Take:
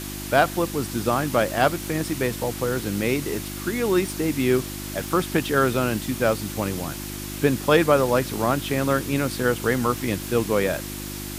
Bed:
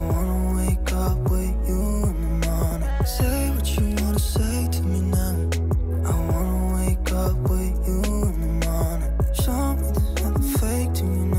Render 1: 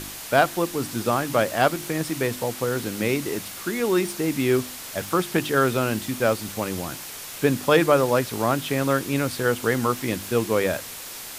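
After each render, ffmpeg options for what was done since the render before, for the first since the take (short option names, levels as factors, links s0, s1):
-af "bandreject=f=50:t=h:w=4,bandreject=f=100:t=h:w=4,bandreject=f=150:t=h:w=4,bandreject=f=200:t=h:w=4,bandreject=f=250:t=h:w=4,bandreject=f=300:t=h:w=4,bandreject=f=350:t=h:w=4"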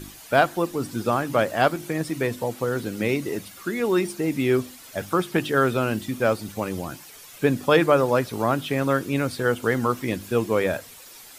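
-af "afftdn=nr=11:nf=-37"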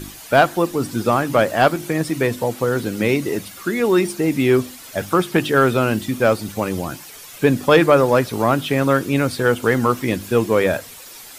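-af "acontrast=51"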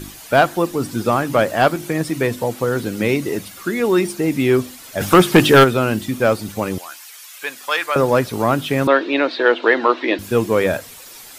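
-filter_complex "[0:a]asplit=3[s0][s1][s2];[s0]afade=t=out:st=5:d=0.02[s3];[s1]aeval=exprs='0.668*sin(PI/2*1.78*val(0)/0.668)':c=same,afade=t=in:st=5:d=0.02,afade=t=out:st=5.63:d=0.02[s4];[s2]afade=t=in:st=5.63:d=0.02[s5];[s3][s4][s5]amix=inputs=3:normalize=0,asettb=1/sr,asplit=3[s6][s7][s8];[s6]atrim=end=6.784[s9];[s7]atrim=start=6.78:end=7.96,asetpts=PTS-STARTPTS,afade=t=in:d=0.004:c=qsin,afade=t=out:st=1.176:d=0.004:c=qsin,highpass=1200[s10];[s8]atrim=start=7.956[s11];[s9][s10]acrossfade=d=0.004:c1=hsin:c2=qsin[s12];[s12][s11]acrossfade=d=0.004:c1=qsin:c2=hsin,asettb=1/sr,asplit=3[s13][s14][s15];[s13]atrim=end=8.874[s16];[s14]atrim=start=8.87:end=10.19,asetpts=PTS-STARTPTS,afade=t=in:d=0.004:c=qsin,afade=t=out:st=1.316:d=0.004:c=qsin,highpass=f=310:w=0.5412,highpass=f=310:w=1.3066,equalizer=f=320:t=q:w=4:g=8,equalizer=f=630:t=q:w=4:g=7,equalizer=f=940:t=q:w=4:g=6,equalizer=f=1800:t=q:w=4:g=7,equalizer=f=2700:t=q:w=4:g=5,equalizer=f=3900:t=q:w=4:g=10,lowpass=f=4200:w=0.5412,lowpass=f=4200:w=1.3066[s17];[s15]atrim=start=10.186[s18];[s16][s17]acrossfade=d=0.004:c1=hsin:c2=qsin[s19];[s19][s18]acrossfade=d=0.004:c1=qsin:c2=hsin"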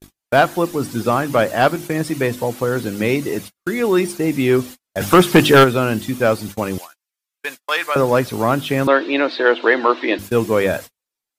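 -af "agate=range=0.00447:threshold=0.0316:ratio=16:detection=peak"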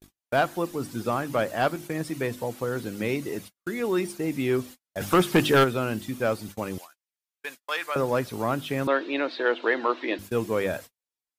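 -af "volume=0.335"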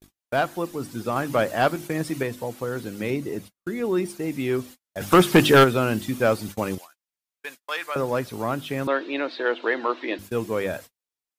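-filter_complex "[0:a]asettb=1/sr,asplit=3[s0][s1][s2];[s0]atrim=end=3.104[s3];[s1]atrim=start=3.1:end=4.06,asetpts=PTS-STARTPTS,afade=t=in:d=0.004:c=qsin,afade=t=out:st=0.956:d=0.004:c=qsin,tiltshelf=f=680:g=3.5[s4];[s2]atrim=start=4.056[s5];[s3][s4]acrossfade=d=0.004:c1=hsin:c2=qsin[s6];[s6][s5]acrossfade=d=0.004:c1=qsin:c2=hsin,asplit=5[s7][s8][s9][s10][s11];[s7]atrim=end=1.162[s12];[s8]atrim=start=1.158:end=2.232,asetpts=PTS-STARTPTS,volume=1.5[s13];[s9]atrim=start=2.228:end=5.122[s14];[s10]atrim=start=5.118:end=6.752,asetpts=PTS-STARTPTS,volume=1.78[s15];[s11]atrim=start=6.748[s16];[s12][s13]acrossfade=d=0.004:c1=hsin:c2=hsin[s17];[s17][s14]acrossfade=d=0.004:c1=hsin:c2=hsin[s18];[s18][s15]acrossfade=d=0.004:c1=hsin:c2=hsin[s19];[s19][s16]acrossfade=d=0.004:c1=hsin:c2=hsin"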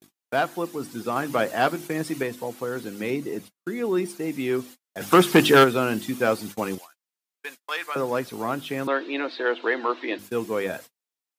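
-af "highpass=170,bandreject=f=580:w=12"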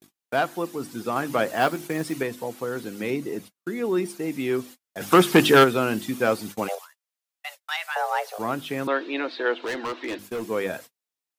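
-filter_complex "[0:a]asettb=1/sr,asplit=3[s0][s1][s2];[s0]atrim=end=1.544[s3];[s1]atrim=start=1.54:end=2.15,asetpts=PTS-STARTPTS,afade=t=in:d=0.004:c=qsin,afade=t=out:st=0.606:d=0.004:c=qsin,acrusher=bits=6:mode=log:mix=0:aa=0.000001[s4];[s2]atrim=start=2.146[s5];[s3][s4]acrossfade=d=0.004:c1=hsin:c2=qsin[s6];[s6][s5]acrossfade=d=0.004:c1=qsin:c2=hsin,asplit=3[s7][s8][s9];[s7]afade=t=out:st=6.67:d=0.02[s10];[s8]afreqshift=310,afade=t=in:st=6.67:d=0.02,afade=t=out:st=8.38:d=0.02[s11];[s9]afade=t=in:st=8.38:d=0.02[s12];[s10][s11][s12]amix=inputs=3:normalize=0,asettb=1/sr,asplit=3[s13][s14][s15];[s13]atrim=end=9.604[s16];[s14]atrim=start=9.6:end=10.5,asetpts=PTS-STARTPTS,afade=t=in:d=0.004:c=qsin,afade=t=out:st=0.896:d=0.004:c=qsin,asoftclip=type=hard:threshold=0.0501[s17];[s15]atrim=start=10.496[s18];[s16][s17]acrossfade=d=0.004:c1=hsin:c2=qsin[s19];[s19][s18]acrossfade=d=0.004:c1=qsin:c2=hsin"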